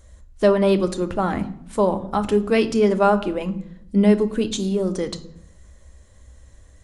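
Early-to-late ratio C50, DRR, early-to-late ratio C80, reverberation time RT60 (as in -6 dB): 15.5 dB, 9.0 dB, 18.5 dB, 0.70 s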